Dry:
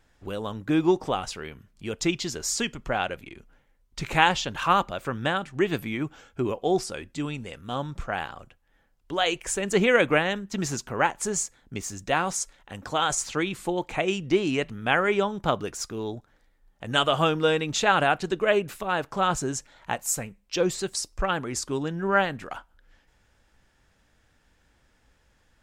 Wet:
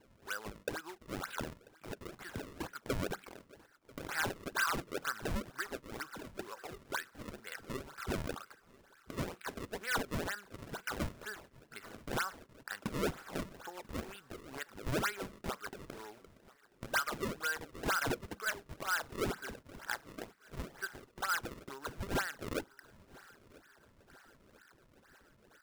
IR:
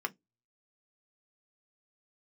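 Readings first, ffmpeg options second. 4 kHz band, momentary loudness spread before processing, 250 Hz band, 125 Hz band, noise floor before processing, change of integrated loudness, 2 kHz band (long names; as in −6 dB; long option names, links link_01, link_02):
−14.0 dB, 13 LU, −14.5 dB, −11.5 dB, −65 dBFS, −13.5 dB, −10.0 dB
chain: -filter_complex "[0:a]acompressor=threshold=-33dB:ratio=6,bandpass=frequency=1500:width_type=q:width=6.9:csg=0,acrusher=samples=32:mix=1:aa=0.000001:lfo=1:lforange=51.2:lforate=2.1,asoftclip=type=tanh:threshold=-39.5dB,aecho=1:1:990|1980|2970|3960:0.0708|0.0396|0.0222|0.0124,asplit=2[link_01][link_02];[1:a]atrim=start_sample=2205[link_03];[link_02][link_03]afir=irnorm=-1:irlink=0,volume=-13.5dB[link_04];[link_01][link_04]amix=inputs=2:normalize=0,volume=11.5dB"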